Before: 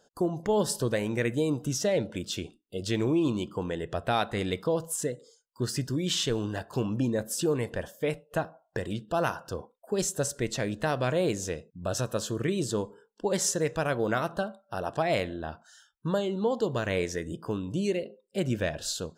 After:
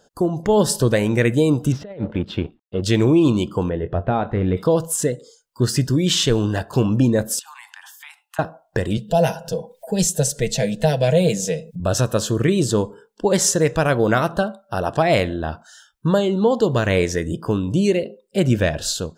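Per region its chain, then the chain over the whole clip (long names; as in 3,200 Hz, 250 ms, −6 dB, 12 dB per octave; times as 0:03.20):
0:01.72–0:02.83: mu-law and A-law mismatch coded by A + high-frequency loss of the air 420 metres + compressor whose output falls as the input rises −34 dBFS, ratio −0.5
0:03.69–0:04.57: de-essing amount 100% + head-to-tape spacing loss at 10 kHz 44 dB + double-tracking delay 22 ms −10 dB
0:07.39–0:08.39: Butterworth high-pass 810 Hz 96 dB per octave + downward compressor 5 to 1, threshold −47 dBFS
0:08.97–0:11.80: comb filter 6.2 ms, depth 58% + upward compression, threshold −36 dBFS + phaser with its sweep stopped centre 320 Hz, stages 6
whole clip: low-shelf EQ 150 Hz +5.5 dB; automatic gain control gain up to 3 dB; level +6.5 dB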